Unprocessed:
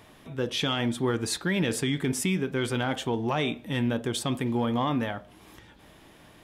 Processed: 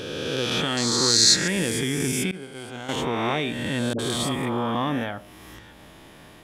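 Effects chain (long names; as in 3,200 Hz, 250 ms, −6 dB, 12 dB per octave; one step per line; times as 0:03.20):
peak hold with a rise ahead of every peak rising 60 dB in 1.80 s
0:00.77–0:01.48: flat-topped bell 5,500 Hz +15.5 dB 1.1 octaves
in parallel at −1 dB: downward compressor, threshold −34 dBFS, peak gain reduction 21.5 dB
0:02.31–0:02.89: on the sum: downward expander −14 dBFS
0:03.93–0:04.75: all-pass dispersion highs, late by 60 ms, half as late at 610 Hz
level −3 dB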